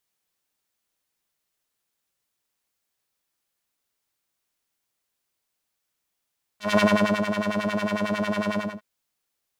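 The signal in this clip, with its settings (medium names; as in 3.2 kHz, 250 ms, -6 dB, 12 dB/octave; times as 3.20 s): synth patch with filter wobble G#3, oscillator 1 square, interval +12 st, oscillator 2 level -12.5 dB, sub -9 dB, noise -12 dB, filter bandpass, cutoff 620 Hz, Q 1.2, filter envelope 1.5 oct, attack 174 ms, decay 0.47 s, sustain -8.5 dB, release 0.26 s, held 1.95 s, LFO 11 Hz, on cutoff 1.4 oct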